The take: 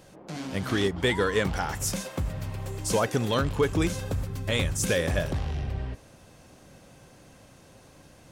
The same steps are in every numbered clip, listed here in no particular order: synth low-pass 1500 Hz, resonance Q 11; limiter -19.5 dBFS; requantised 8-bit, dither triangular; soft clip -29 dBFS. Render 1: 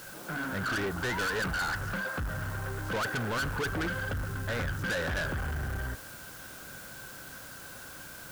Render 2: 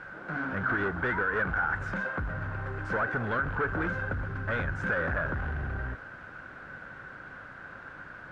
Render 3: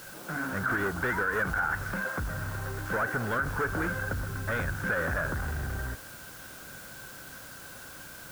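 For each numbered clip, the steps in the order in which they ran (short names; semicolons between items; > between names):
synth low-pass > requantised > soft clip > limiter; soft clip > requantised > synth low-pass > limiter; soft clip > synth low-pass > requantised > limiter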